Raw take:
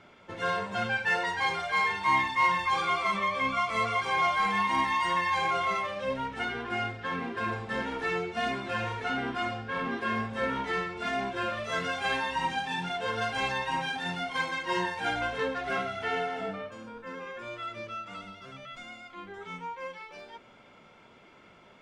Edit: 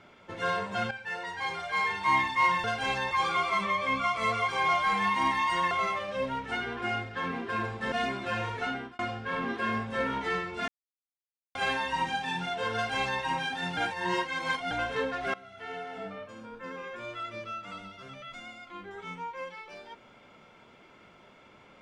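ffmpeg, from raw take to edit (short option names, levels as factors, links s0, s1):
-filter_complex "[0:a]asplit=12[s0][s1][s2][s3][s4][s5][s6][s7][s8][s9][s10][s11];[s0]atrim=end=0.91,asetpts=PTS-STARTPTS,afade=t=out:st=0.906:d=0.004:c=hsin:silence=0.223872[s12];[s1]atrim=start=0.91:end=2.642,asetpts=PTS-STARTPTS,afade=t=in:d=1.22:silence=0.223872[s13];[s2]atrim=start=13.178:end=13.652[s14];[s3]atrim=start=2.638:end=5.242[s15];[s4]atrim=start=5.588:end=7.802[s16];[s5]atrim=start=8.348:end=9.42,asetpts=PTS-STARTPTS,afade=t=out:st=0.712:d=0.36[s17];[s6]atrim=start=9.42:end=11.11,asetpts=PTS-STARTPTS,afade=t=in:d=0.004:c=hsin,afade=t=out:st=1.686:d=0.004:c=hsin[s18];[s7]atrim=start=11.11:end=11.98,asetpts=PTS-STARTPTS,volume=0[s19];[s8]atrim=start=11.98:end=14.202,asetpts=PTS-STARTPTS,afade=t=in:d=0.004:c=hsin[s20];[s9]atrim=start=14.198:end=15.142,asetpts=PTS-STARTPTS,areverse[s21];[s10]atrim=start=15.138:end=15.77,asetpts=PTS-STARTPTS,afade=t=out:st=0.628:d=0.004:c=hsin:silence=0.0944061[s22];[s11]atrim=start=15.77,asetpts=PTS-STARTPTS,afade=t=in:d=1.28:silence=0.0944061[s23];[s12][s13]concat=n=2:v=0:a=1[s24];[s24][s14]acrossfade=d=0.004:c1=hsin:c2=hsin[s25];[s25][s15]acrossfade=d=0.004:c1=hsin:c2=hsin[s26];[s26][s16]acrossfade=d=0.004:c1=hsin:c2=hsin[s27];[s17][s18][s19][s20]concat=n=4:v=0:a=1[s28];[s27][s28]acrossfade=d=0.004:c1=hsin:c2=hsin[s29];[s29][s21]acrossfade=d=0.004:c1=hsin:c2=hsin[s30];[s22][s23]concat=n=2:v=0:a=1[s31];[s30][s31]acrossfade=d=0.004:c1=hsin:c2=hsin"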